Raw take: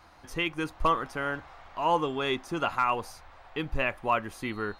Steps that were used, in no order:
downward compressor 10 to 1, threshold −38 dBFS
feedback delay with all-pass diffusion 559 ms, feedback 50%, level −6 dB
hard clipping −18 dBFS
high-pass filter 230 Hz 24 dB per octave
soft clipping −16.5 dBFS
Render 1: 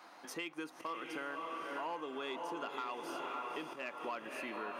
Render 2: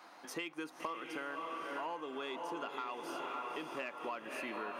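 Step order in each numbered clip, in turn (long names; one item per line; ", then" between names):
feedback delay with all-pass diffusion, then hard clipping, then soft clipping, then downward compressor, then high-pass filter
feedback delay with all-pass diffusion, then soft clipping, then hard clipping, then high-pass filter, then downward compressor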